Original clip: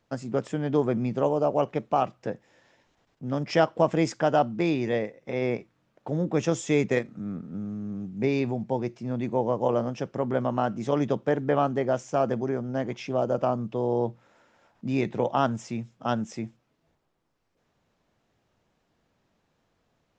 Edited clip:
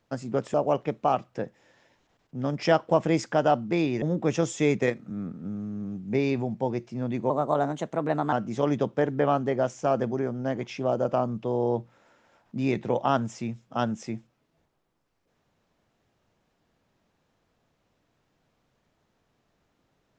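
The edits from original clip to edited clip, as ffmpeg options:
ffmpeg -i in.wav -filter_complex "[0:a]asplit=5[link_01][link_02][link_03][link_04][link_05];[link_01]atrim=end=0.542[link_06];[link_02]atrim=start=1.418:end=4.902[link_07];[link_03]atrim=start=6.108:end=9.394[link_08];[link_04]atrim=start=9.39:end=10.62,asetpts=PTS-STARTPTS,asetrate=52920,aresample=44100,atrim=end_sample=45202,asetpts=PTS-STARTPTS[link_09];[link_05]atrim=start=10.616[link_10];[link_06][link_07]acrossfade=duration=0.004:curve1=hsin:curve2=hsin[link_11];[link_11][link_08]acrossfade=duration=0.004:curve1=hsin:curve2=hsin[link_12];[link_12][link_09]acrossfade=duration=0.004:curve1=hsin:curve2=hsin[link_13];[link_13][link_10]acrossfade=duration=0.004:curve1=hsin:curve2=hsin" out.wav

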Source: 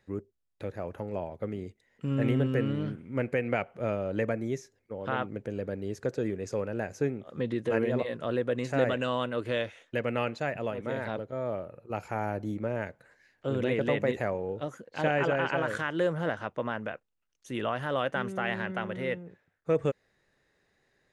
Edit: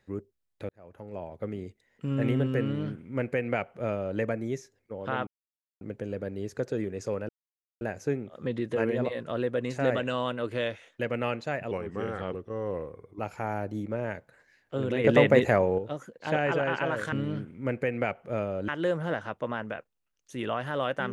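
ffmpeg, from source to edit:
ffmpeg -i in.wav -filter_complex "[0:a]asplit=10[link_01][link_02][link_03][link_04][link_05][link_06][link_07][link_08][link_09][link_10];[link_01]atrim=end=0.69,asetpts=PTS-STARTPTS,afade=type=out:start_time=0.686:duration=0.004:curve=hsin[link_11];[link_02]atrim=start=0.69:end=5.27,asetpts=PTS-STARTPTS,afade=type=in:duration=0.77,afade=type=out:start_time=4.576:duration=0.004:curve=hsin,apad=pad_dur=0.54[link_12];[link_03]atrim=start=5.27:end=6.75,asetpts=PTS-STARTPTS,afade=type=in:duration=0.004:curve=hsin,afade=type=out:start_time=1.476:duration=0.004:curve=hsin,apad=pad_dur=0.52[link_13];[link_04]atrim=start=6.75:end=10.654,asetpts=PTS-STARTPTS,afade=type=in:duration=0.004:curve=hsin[link_14];[link_05]atrim=start=10.65:end=11.91,asetpts=PTS-STARTPTS,asetrate=37485,aresample=44100[link_15];[link_06]atrim=start=11.906:end=13.762[link_16];[link_07]atrim=start=13.758:end=14.502,asetpts=PTS-STARTPTS,volume=8dB[link_17];[link_08]atrim=start=14.498:end=15.842[link_18];[link_09]atrim=start=2.628:end=4.192[link_19];[link_10]atrim=start=15.838[link_20];[link_11][link_12][link_13][link_14]concat=n=4:v=0:a=1[link_21];[link_21][link_15]acrossfade=duration=0.004:curve1=hsin:curve2=hsin[link_22];[link_22][link_16]acrossfade=duration=0.004:curve1=hsin:curve2=hsin[link_23];[link_23][link_17]acrossfade=duration=0.004:curve1=hsin:curve2=hsin[link_24];[link_24][link_18]acrossfade=duration=0.004:curve1=hsin:curve2=hsin[link_25];[link_25][link_19]acrossfade=duration=0.004:curve1=hsin:curve2=hsin[link_26];[link_26][link_20]acrossfade=duration=0.004:curve1=hsin:curve2=hsin" out.wav

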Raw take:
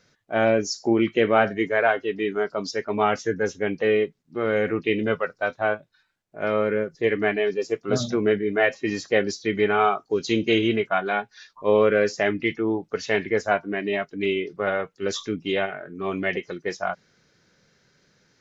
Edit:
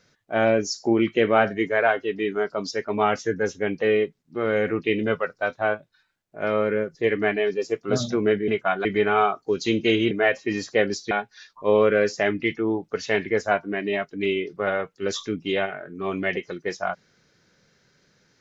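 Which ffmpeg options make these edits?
ffmpeg -i in.wav -filter_complex "[0:a]asplit=5[link_01][link_02][link_03][link_04][link_05];[link_01]atrim=end=8.482[link_06];[link_02]atrim=start=10.738:end=11.112[link_07];[link_03]atrim=start=9.478:end=10.742[link_08];[link_04]atrim=start=8.478:end=9.482[link_09];[link_05]atrim=start=11.108[link_10];[link_06][link_07]acrossfade=duration=0.004:curve1=hsin:curve2=hsin[link_11];[link_11][link_08]acrossfade=duration=0.004:curve1=hsin:curve2=hsin[link_12];[link_12][link_09]acrossfade=duration=0.004:curve1=hsin:curve2=hsin[link_13];[link_13][link_10]acrossfade=duration=0.004:curve1=hsin:curve2=hsin" out.wav

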